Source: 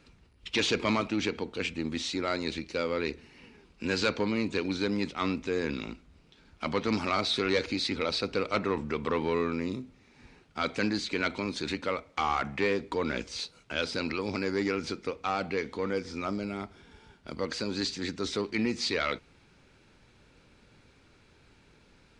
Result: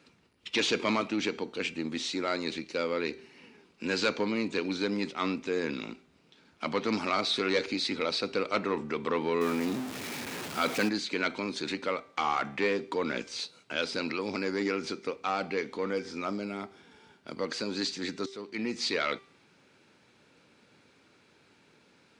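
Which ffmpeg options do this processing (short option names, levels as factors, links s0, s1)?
-filter_complex "[0:a]asettb=1/sr,asplit=3[s0][s1][s2];[s0]atrim=end=9.414[s3];[s1]atrim=start=9.41:end=10.89,asetpts=PTS-STARTPTS,afade=t=in:d=0.004:c=qsin,afade=t=out:st=1.476:d=0.004:c=qsin,aeval=exprs='val(0)+0.5*0.0266*sgn(val(0))':c=same[s4];[s2]atrim=start=10.886[s5];[s3][s4]acrossfade=d=0.004:c1=hsin:c2=qsin[s6];[s6][s5]acrossfade=d=0.004:c1=qsin:c2=hsin,asplit=2[s7][s8];[s7]atrim=end=18.26,asetpts=PTS-STARTPTS,afade=t=out:st=18.256:d=0.004:c=hsin:silence=0.133352[s9];[s8]atrim=start=18.26,asetpts=PTS-STARTPTS,afade=t=in:d=0.6:silence=0.133352[s10];[s9][s10]concat=n=2:v=0:a=1,highpass=180,bandreject=f=391.4:t=h:w=4,bandreject=f=782.8:t=h:w=4,bandreject=f=1174.2:t=h:w=4,bandreject=f=1565.6:t=h:w=4,bandreject=f=1957:t=h:w=4,bandreject=f=2348.4:t=h:w=4,bandreject=f=2739.8:t=h:w=4,bandreject=f=3131.2:t=h:w=4,bandreject=f=3522.6:t=h:w=4,bandreject=f=3914:t=h:w=4,bandreject=f=4305.4:t=h:w=4,bandreject=f=4696.8:t=h:w=4,bandreject=f=5088.2:t=h:w=4,bandreject=f=5479.6:t=h:w=4,bandreject=f=5871:t=h:w=4,bandreject=f=6262.4:t=h:w=4,bandreject=f=6653.8:t=h:w=4,bandreject=f=7045.2:t=h:w=4,bandreject=f=7436.6:t=h:w=4,bandreject=f=7828:t=h:w=4,bandreject=f=8219.4:t=h:w=4,bandreject=f=8610.8:t=h:w=4,bandreject=f=9002.2:t=h:w=4,bandreject=f=9393.6:t=h:w=4,bandreject=f=9785:t=h:w=4,bandreject=f=10176.4:t=h:w=4,bandreject=f=10567.8:t=h:w=4,bandreject=f=10959.2:t=h:w=4,bandreject=f=11350.6:t=h:w=4,bandreject=f=11742:t=h:w=4,bandreject=f=12133.4:t=h:w=4,bandreject=f=12524.8:t=h:w=4,bandreject=f=12916.2:t=h:w=4,bandreject=f=13307.6:t=h:w=4"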